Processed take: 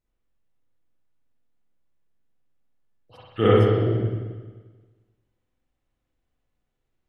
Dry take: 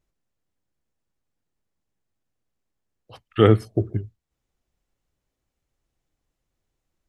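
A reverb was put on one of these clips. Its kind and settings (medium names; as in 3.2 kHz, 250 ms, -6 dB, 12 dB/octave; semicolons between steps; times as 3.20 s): spring tank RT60 1.4 s, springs 44/48 ms, chirp 20 ms, DRR -8 dB; trim -8 dB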